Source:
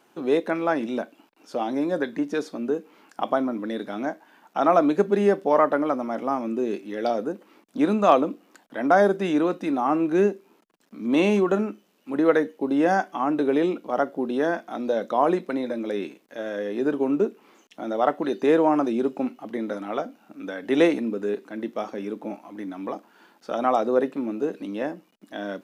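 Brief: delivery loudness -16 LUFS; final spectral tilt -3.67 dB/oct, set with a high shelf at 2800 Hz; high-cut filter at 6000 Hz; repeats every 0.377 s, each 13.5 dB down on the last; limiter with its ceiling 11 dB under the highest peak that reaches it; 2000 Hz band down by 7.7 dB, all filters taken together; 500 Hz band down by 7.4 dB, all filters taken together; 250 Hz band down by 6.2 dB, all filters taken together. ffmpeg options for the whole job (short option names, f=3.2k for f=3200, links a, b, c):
-af "lowpass=6k,equalizer=f=250:t=o:g=-5,equalizer=f=500:t=o:g=-7.5,equalizer=f=2k:t=o:g=-7,highshelf=f=2.8k:g=-8.5,alimiter=limit=-21dB:level=0:latency=1,aecho=1:1:377|754:0.211|0.0444,volume=17.5dB"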